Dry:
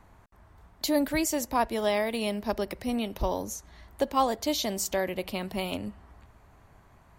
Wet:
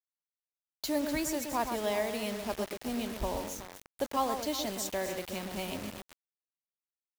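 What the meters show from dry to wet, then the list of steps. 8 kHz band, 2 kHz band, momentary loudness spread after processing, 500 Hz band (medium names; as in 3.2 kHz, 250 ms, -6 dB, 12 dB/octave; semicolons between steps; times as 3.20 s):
-4.0 dB, -4.5 dB, 9 LU, -5.0 dB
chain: echo whose repeats swap between lows and highs 124 ms, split 2 kHz, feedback 64%, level -6.5 dB; bit crusher 6-bit; trim -6 dB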